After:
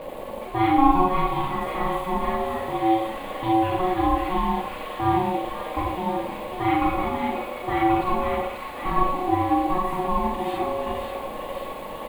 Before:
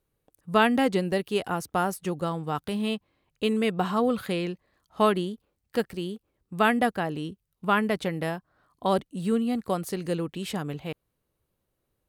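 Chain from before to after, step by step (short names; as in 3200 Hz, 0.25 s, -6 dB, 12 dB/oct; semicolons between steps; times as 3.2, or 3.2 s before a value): zero-crossing step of -28.5 dBFS; high shelf 2300 Hz -10 dB; comb 3.5 ms, depth 40%; Schroeder reverb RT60 0.71 s, combs from 33 ms, DRR -3.5 dB; bit-crush 6-bit; high shelf 4700 Hz -11.5 dB; fixed phaser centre 2300 Hz, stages 4; small resonant body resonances 550/1000 Hz, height 12 dB, ringing for 0.1 s; ring modulator 550 Hz; thin delay 0.537 s, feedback 73%, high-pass 1600 Hz, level -4 dB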